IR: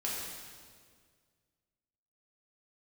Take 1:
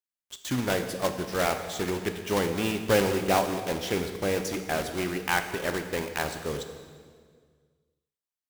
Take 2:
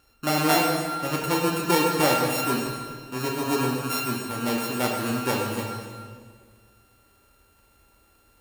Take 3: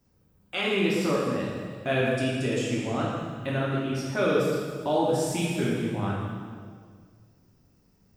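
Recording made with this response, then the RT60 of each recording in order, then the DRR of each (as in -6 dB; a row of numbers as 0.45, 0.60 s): 3; 1.9, 1.9, 1.9 s; 6.5, -1.0, -6.0 dB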